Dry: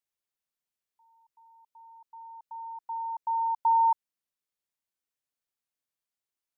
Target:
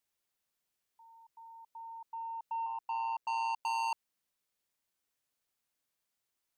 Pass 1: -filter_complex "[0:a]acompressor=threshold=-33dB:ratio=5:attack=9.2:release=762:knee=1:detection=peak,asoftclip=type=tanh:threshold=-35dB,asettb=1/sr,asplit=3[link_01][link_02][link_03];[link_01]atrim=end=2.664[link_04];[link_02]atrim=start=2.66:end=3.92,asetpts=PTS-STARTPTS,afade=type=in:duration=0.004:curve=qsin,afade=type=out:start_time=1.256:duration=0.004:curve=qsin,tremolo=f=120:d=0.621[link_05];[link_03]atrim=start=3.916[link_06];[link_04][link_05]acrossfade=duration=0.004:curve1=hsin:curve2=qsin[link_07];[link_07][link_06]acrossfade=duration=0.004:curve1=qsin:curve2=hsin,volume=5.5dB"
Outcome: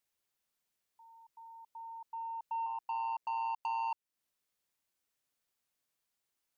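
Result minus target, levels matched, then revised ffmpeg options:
downward compressor: peak gain reduction +9 dB
-filter_complex "[0:a]acompressor=threshold=-21.5dB:ratio=5:attack=9.2:release=762:knee=1:detection=peak,asoftclip=type=tanh:threshold=-35dB,asettb=1/sr,asplit=3[link_01][link_02][link_03];[link_01]atrim=end=2.664[link_04];[link_02]atrim=start=2.66:end=3.92,asetpts=PTS-STARTPTS,afade=type=in:duration=0.004:curve=qsin,afade=type=out:start_time=1.256:duration=0.004:curve=qsin,tremolo=f=120:d=0.621[link_05];[link_03]atrim=start=3.916[link_06];[link_04][link_05]acrossfade=duration=0.004:curve1=hsin:curve2=qsin[link_07];[link_07][link_06]acrossfade=duration=0.004:curve1=qsin:curve2=hsin,volume=5.5dB"

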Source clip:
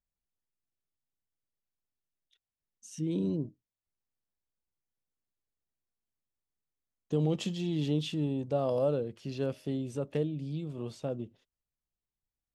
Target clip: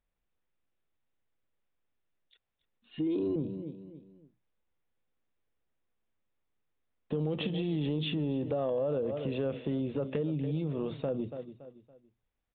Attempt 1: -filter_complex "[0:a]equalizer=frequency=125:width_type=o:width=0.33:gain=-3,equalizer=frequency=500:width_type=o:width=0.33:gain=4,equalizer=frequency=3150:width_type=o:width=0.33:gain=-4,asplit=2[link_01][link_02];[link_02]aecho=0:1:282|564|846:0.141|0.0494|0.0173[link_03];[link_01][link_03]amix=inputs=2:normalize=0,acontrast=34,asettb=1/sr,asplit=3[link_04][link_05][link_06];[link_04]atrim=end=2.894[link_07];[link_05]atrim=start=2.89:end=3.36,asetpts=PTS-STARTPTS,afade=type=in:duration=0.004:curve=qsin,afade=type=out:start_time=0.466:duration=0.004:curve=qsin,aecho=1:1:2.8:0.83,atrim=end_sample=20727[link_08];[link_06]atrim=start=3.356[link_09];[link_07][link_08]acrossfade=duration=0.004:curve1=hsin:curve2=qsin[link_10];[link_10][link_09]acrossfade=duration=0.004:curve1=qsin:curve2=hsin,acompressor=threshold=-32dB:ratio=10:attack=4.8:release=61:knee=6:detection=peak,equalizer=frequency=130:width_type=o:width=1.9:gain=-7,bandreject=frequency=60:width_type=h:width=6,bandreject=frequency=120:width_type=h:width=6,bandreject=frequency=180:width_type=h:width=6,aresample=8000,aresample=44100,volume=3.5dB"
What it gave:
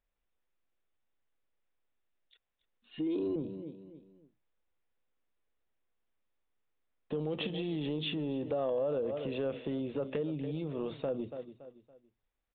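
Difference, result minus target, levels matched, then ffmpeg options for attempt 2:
125 Hz band −4.5 dB
-filter_complex "[0:a]equalizer=frequency=125:width_type=o:width=0.33:gain=-3,equalizer=frequency=500:width_type=o:width=0.33:gain=4,equalizer=frequency=3150:width_type=o:width=0.33:gain=-4,asplit=2[link_01][link_02];[link_02]aecho=0:1:282|564|846:0.141|0.0494|0.0173[link_03];[link_01][link_03]amix=inputs=2:normalize=0,acontrast=34,asettb=1/sr,asplit=3[link_04][link_05][link_06];[link_04]atrim=end=2.894[link_07];[link_05]atrim=start=2.89:end=3.36,asetpts=PTS-STARTPTS,afade=type=in:duration=0.004:curve=qsin,afade=type=out:start_time=0.466:duration=0.004:curve=qsin,aecho=1:1:2.8:0.83,atrim=end_sample=20727[link_08];[link_06]atrim=start=3.356[link_09];[link_07][link_08]acrossfade=duration=0.004:curve1=hsin:curve2=qsin[link_10];[link_10][link_09]acrossfade=duration=0.004:curve1=qsin:curve2=hsin,acompressor=threshold=-32dB:ratio=10:attack=4.8:release=61:knee=6:detection=peak,bandreject=frequency=60:width_type=h:width=6,bandreject=frequency=120:width_type=h:width=6,bandreject=frequency=180:width_type=h:width=6,aresample=8000,aresample=44100,volume=3.5dB"

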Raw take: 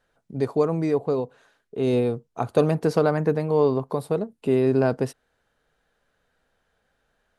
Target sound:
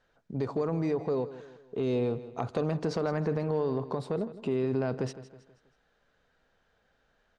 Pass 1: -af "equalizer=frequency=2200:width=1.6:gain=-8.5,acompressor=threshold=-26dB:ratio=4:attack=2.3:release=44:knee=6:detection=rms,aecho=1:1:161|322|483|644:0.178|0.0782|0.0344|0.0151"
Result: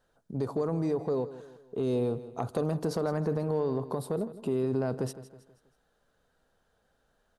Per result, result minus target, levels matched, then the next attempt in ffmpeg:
8,000 Hz band +5.0 dB; 2,000 Hz band −4.0 dB
-af "equalizer=frequency=2200:width=1.6:gain=-8.5,acompressor=threshold=-26dB:ratio=4:attack=2.3:release=44:knee=6:detection=rms,lowpass=frequency=6700:width=0.5412,lowpass=frequency=6700:width=1.3066,aecho=1:1:161|322|483|644:0.178|0.0782|0.0344|0.0151"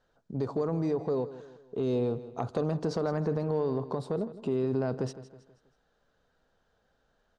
2,000 Hz band −4.0 dB
-af "acompressor=threshold=-26dB:ratio=4:attack=2.3:release=44:knee=6:detection=rms,lowpass=frequency=6700:width=0.5412,lowpass=frequency=6700:width=1.3066,aecho=1:1:161|322|483|644:0.178|0.0782|0.0344|0.0151"

